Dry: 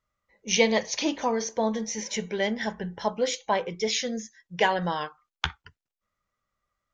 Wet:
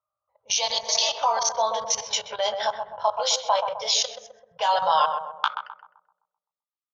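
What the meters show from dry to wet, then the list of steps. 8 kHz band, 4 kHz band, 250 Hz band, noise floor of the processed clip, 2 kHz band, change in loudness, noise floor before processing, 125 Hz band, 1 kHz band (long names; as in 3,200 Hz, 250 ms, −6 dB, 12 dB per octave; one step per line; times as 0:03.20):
+6.5 dB, +7.0 dB, below −25 dB, below −85 dBFS, −4.0 dB, +3.5 dB, below −85 dBFS, below −15 dB, +7.5 dB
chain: spectral tilt +2.5 dB per octave
mains-hum notches 50/100/150/200 Hz
low-pass that shuts in the quiet parts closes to 850 Hz, open at −19 dBFS
downward compressor 2.5 to 1, threshold −28 dBFS, peak gain reduction 9 dB
healed spectral selection 0:00.73–0:01.06, 260–2,500 Hz before
double-tracking delay 19 ms −7 dB
high-pass filter sweep 90 Hz → 3,700 Hz, 0:04.61–0:05.89
output level in coarse steps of 17 dB
drawn EQ curve 130 Hz 0 dB, 190 Hz −22 dB, 310 Hz −25 dB, 600 Hz +11 dB, 1,300 Hz +13 dB, 1,900 Hz −8 dB, 3,000 Hz +8 dB, 4,600 Hz +11 dB, 9,300 Hz +4 dB
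on a send: feedback echo with a low-pass in the loop 129 ms, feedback 56%, low-pass 910 Hz, level −4 dB
on the sum: level +3.5 dB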